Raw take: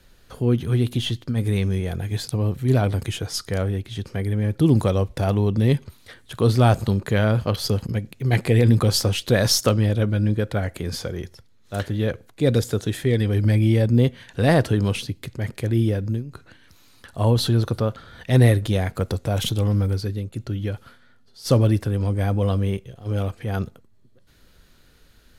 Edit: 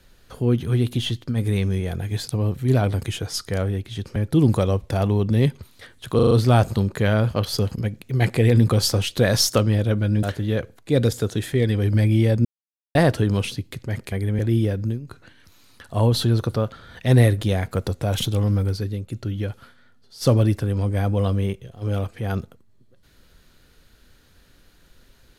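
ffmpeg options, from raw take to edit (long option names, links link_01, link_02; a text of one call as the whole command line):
ffmpeg -i in.wav -filter_complex "[0:a]asplit=11[link_01][link_02][link_03][link_04][link_05][link_06][link_07][link_08][link_09][link_10][link_11];[link_01]atrim=end=4.162[link_12];[link_02]atrim=start=4.428:end=6.462[link_13];[link_03]atrim=start=6.418:end=6.462[link_14];[link_04]atrim=start=6.418:end=6.462[link_15];[link_05]atrim=start=6.418:end=6.462[link_16];[link_06]atrim=start=6.418:end=10.342[link_17];[link_07]atrim=start=11.738:end=13.96,asetpts=PTS-STARTPTS,afade=type=out:start_time=2.218:duration=0.004:curve=hsin[link_18];[link_08]atrim=start=13.96:end=14.46,asetpts=PTS-STARTPTS,volume=0[link_19];[link_09]atrim=start=14.46:end=15.632,asetpts=PTS-STARTPTS,afade=type=in:duration=0.004:curve=hsin[link_20];[link_10]atrim=start=4.158:end=4.432[link_21];[link_11]atrim=start=15.628[link_22];[link_12][link_13]acrossfade=duration=0.004:curve1=hsin:curve2=hsin[link_23];[link_23][link_14]acrossfade=duration=0.004:curve1=hsin:curve2=hsin[link_24];[link_24][link_15]acrossfade=duration=0.004:curve1=hsin:curve2=hsin[link_25];[link_25][link_16]acrossfade=duration=0.004:curve1=hsin:curve2=hsin[link_26];[link_26][link_17]acrossfade=duration=0.004:curve1=hsin:curve2=hsin[link_27];[link_18][link_19][link_20]concat=n=3:v=0:a=1[link_28];[link_27][link_28]acrossfade=duration=0.004:curve1=hsin:curve2=hsin[link_29];[link_29][link_21]acrossfade=duration=0.004:curve1=hsin:curve2=hsin[link_30];[link_30][link_22]acrossfade=duration=0.004:curve1=hsin:curve2=hsin" out.wav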